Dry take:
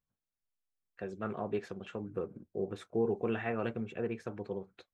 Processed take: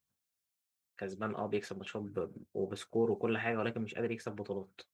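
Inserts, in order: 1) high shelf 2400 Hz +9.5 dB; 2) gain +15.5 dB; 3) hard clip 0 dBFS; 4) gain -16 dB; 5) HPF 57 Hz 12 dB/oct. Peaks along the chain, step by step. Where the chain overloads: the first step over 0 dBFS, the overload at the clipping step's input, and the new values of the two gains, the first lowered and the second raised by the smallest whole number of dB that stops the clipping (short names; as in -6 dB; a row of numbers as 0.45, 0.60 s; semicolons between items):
-19.5, -4.0, -4.0, -20.0, -20.0 dBFS; no overload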